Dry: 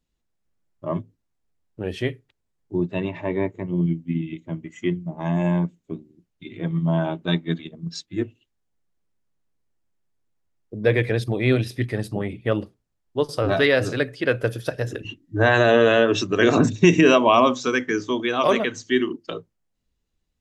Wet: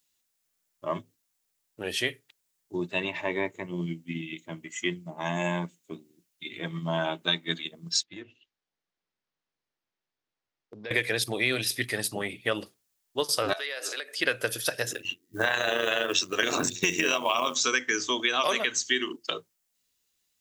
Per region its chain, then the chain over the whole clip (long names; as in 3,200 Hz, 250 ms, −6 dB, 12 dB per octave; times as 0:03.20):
0:08.03–0:10.91: low-pass filter 5,300 Hz 24 dB per octave + downward compressor, threshold −32 dBFS + one half of a high-frequency compander decoder only
0:13.53–0:14.18: high-pass filter 380 Hz 24 dB per octave + downward compressor 8 to 1, threshold −33 dBFS
0:14.93–0:17.56: hum removal 180 Hz, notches 2 + amplitude modulation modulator 90 Hz, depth 50% + floating-point word with a short mantissa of 6 bits
whole clip: spectral tilt +4.5 dB per octave; downward compressor 10 to 1, threshold −21 dBFS